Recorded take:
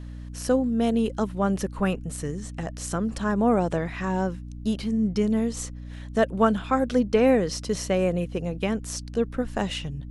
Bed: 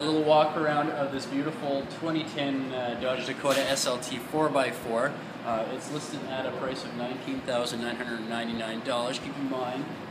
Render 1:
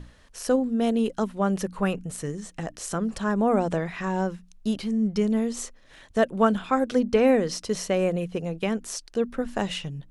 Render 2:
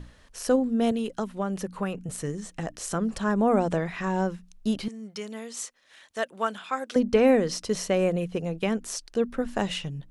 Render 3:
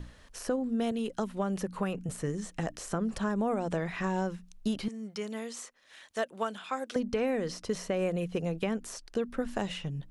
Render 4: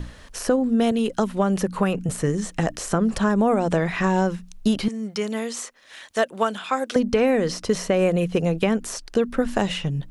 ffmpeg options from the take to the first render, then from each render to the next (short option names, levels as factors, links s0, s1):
-af "bandreject=f=60:t=h:w=6,bandreject=f=120:t=h:w=6,bandreject=f=180:t=h:w=6,bandreject=f=240:t=h:w=6,bandreject=f=300:t=h:w=6"
-filter_complex "[0:a]asettb=1/sr,asplit=3[s0][s1][s2];[s0]atrim=end=0.914[s3];[s1]atrim=start=0.91:end=2.09,asetpts=PTS-STARTPTS,afade=t=in:d=0.004:c=qsin,afade=t=out:st=1.176:d=0.004:c=qsin,acrossover=split=86|1200[s4][s5][s6];[s4]acompressor=threshold=0.00251:ratio=4[s7];[s5]acompressor=threshold=0.0447:ratio=4[s8];[s6]acompressor=threshold=0.0112:ratio=4[s9];[s7][s8][s9]amix=inputs=3:normalize=0[s10];[s2]atrim=start=2.086[s11];[s3][s10]acrossfade=d=0.004:c1=hsin:c2=qsin[s12];[s12][s11]acrossfade=d=0.004:c1=qsin:c2=hsin,asettb=1/sr,asplit=3[s13][s14][s15];[s13]atrim=end=4.884[s16];[s14]atrim=start=4.88:end=6.96,asetpts=PTS-STARTPTS,afade=t=in:d=0.004:c=qsin,afade=t=out:st=2.076:d=0.004:c=qsin,highpass=f=1400:p=1[s17];[s15]atrim=start=6.956[s18];[s16][s17]acrossfade=d=0.004:c1=hsin:c2=qsin[s19];[s19][s18]acrossfade=d=0.004:c1=qsin:c2=hsin"
-filter_complex "[0:a]alimiter=limit=0.141:level=0:latency=1:release=467,acrossover=split=970|2200[s0][s1][s2];[s0]acompressor=threshold=0.0447:ratio=4[s3];[s1]acompressor=threshold=0.01:ratio=4[s4];[s2]acompressor=threshold=0.00708:ratio=4[s5];[s3][s4][s5]amix=inputs=3:normalize=0"
-af "volume=3.35"